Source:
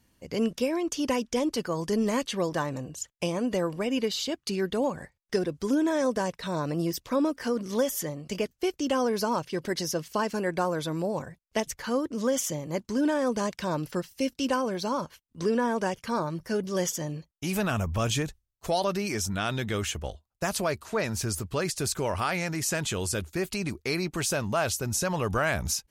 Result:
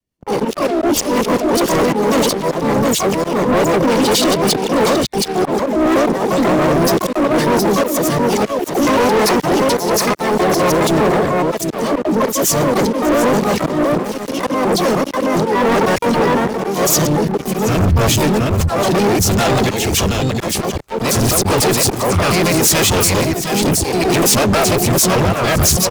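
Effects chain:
reversed piece by piece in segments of 101 ms
rotating-speaker cabinet horn 5.5 Hz, later 0.7 Hz, at 0:09.04
dynamic equaliser 410 Hz, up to +4 dB, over −40 dBFS, Q 1.5
notch filter 1,500 Hz, Q 5.2
on a send: single-tap delay 720 ms −6.5 dB
on the sum: volume swells 305 ms
pitch-shifted copies added −4 semitones −10 dB, +3 semitones −7 dB, +12 semitones −5 dB
leveller curve on the samples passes 5
boost into a limiter +19 dB
multiband upward and downward expander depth 40%
level −9.5 dB

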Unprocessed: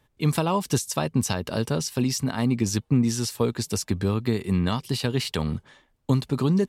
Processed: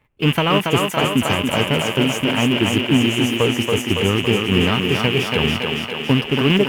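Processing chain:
loose part that buzzes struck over −34 dBFS, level −20 dBFS
in parallel at −5 dB: log-companded quantiser 4 bits
on the sum: formants moved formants +3 semitones
high shelf with overshoot 3,400 Hz −7.5 dB, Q 3
on a send: feedback echo with a high-pass in the loop 280 ms, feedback 69%, high-pass 190 Hz, level −3 dB
on the sum: level +1 dB

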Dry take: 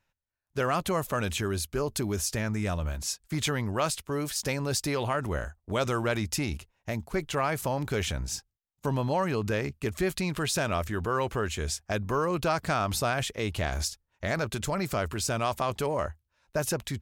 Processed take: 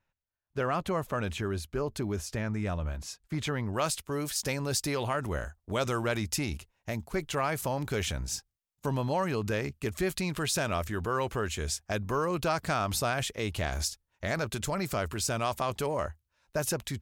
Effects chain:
high-shelf EQ 4,300 Hz −11 dB, from 0:03.73 +2.5 dB
level −2 dB

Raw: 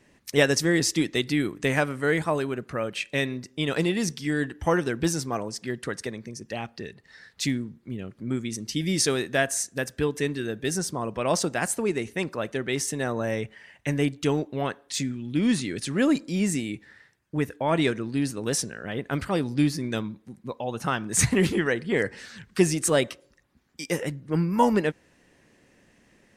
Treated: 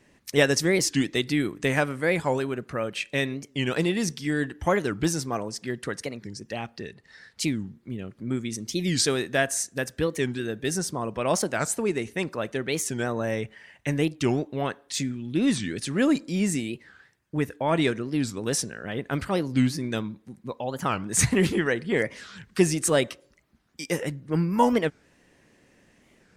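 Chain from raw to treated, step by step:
0:06.83–0:07.49: Butterworth low-pass 12,000 Hz
wow of a warped record 45 rpm, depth 250 cents

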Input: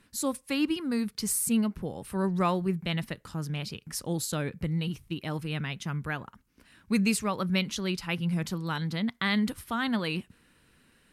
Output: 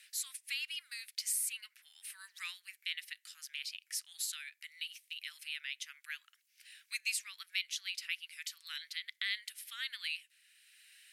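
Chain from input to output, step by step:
Butterworth high-pass 1,900 Hz 36 dB per octave
multiband upward and downward compressor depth 40%
level −2.5 dB

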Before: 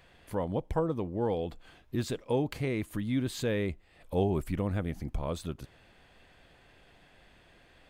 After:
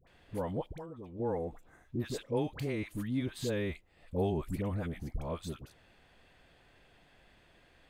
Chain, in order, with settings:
0:01.12–0:01.81: healed spectral selection 2,200–5,700 Hz after
0:00.64–0:01.19: downward compressor 8 to 1, threshold −38 dBFS, peak gain reduction 14.5 dB
all-pass dispersion highs, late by 73 ms, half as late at 880 Hz
level −3.5 dB

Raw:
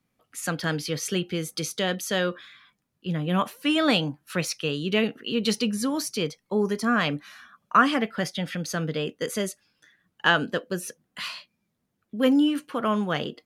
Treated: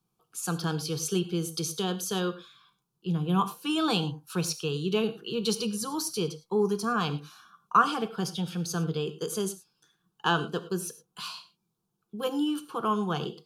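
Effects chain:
phaser with its sweep stopped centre 390 Hz, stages 8
reverb whose tail is shaped and stops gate 130 ms flat, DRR 11.5 dB

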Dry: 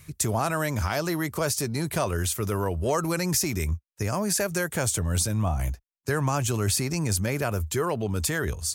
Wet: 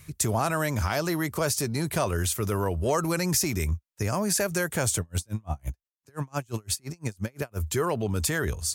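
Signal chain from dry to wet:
0:05.00–0:07.58: tremolo with a sine in dB 5.8 Hz, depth 37 dB

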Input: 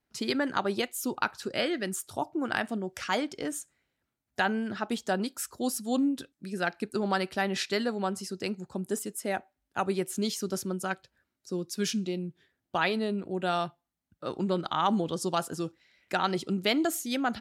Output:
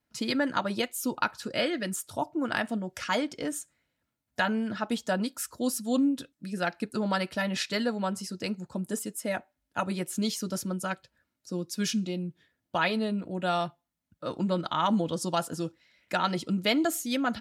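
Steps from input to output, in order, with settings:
notch comb filter 390 Hz
level +2 dB

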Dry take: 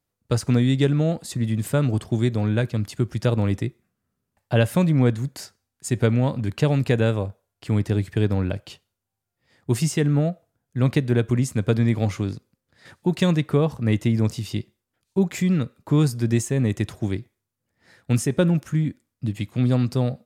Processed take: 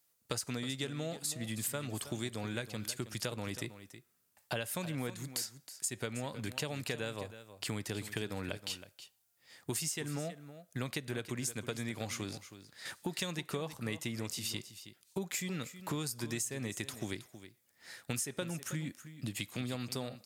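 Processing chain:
spectral tilt +3.5 dB per octave
downward compressor 6 to 1, threshold −35 dBFS, peak gain reduction 17.5 dB
single-tap delay 320 ms −13 dB

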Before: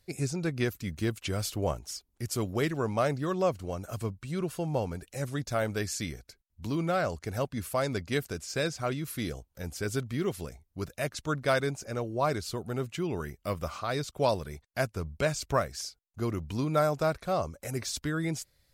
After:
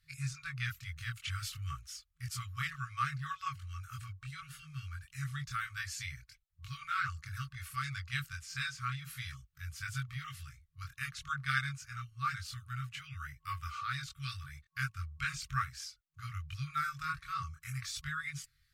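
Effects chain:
bass and treble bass −7 dB, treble −8 dB
multi-voice chorus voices 4, 0.54 Hz, delay 23 ms, depth 1.4 ms
brick-wall band-stop 160–1,100 Hz
level +2.5 dB

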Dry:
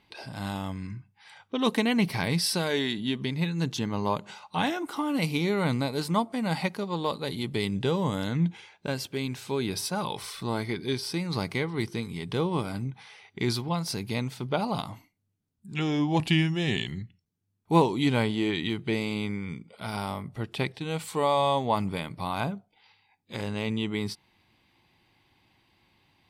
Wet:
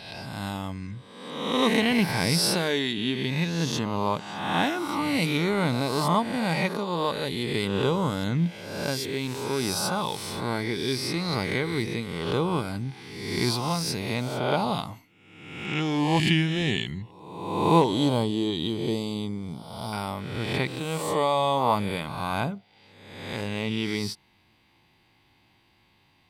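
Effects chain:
peak hold with a rise ahead of every peak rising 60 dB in 1.11 s
0:17.84–0:19.93: flat-topped bell 1,900 Hz −14.5 dB 1.1 octaves

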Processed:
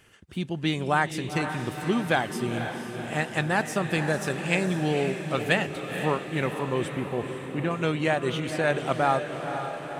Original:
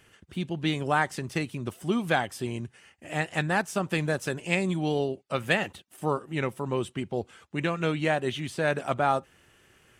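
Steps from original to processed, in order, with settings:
0:06.92–0:07.71: low-pass filter 1,200 Hz 6 dB per octave
feedback delay with all-pass diffusion 500 ms, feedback 63%, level −8 dB
level +1 dB

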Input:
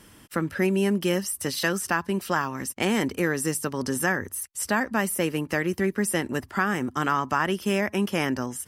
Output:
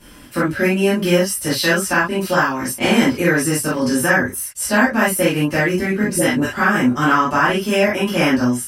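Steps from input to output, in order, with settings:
0:06.03–0:06.49: all-pass dispersion highs, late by 74 ms, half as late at 430 Hz
convolution reverb, pre-delay 3 ms, DRR −12 dB
level −2.5 dB

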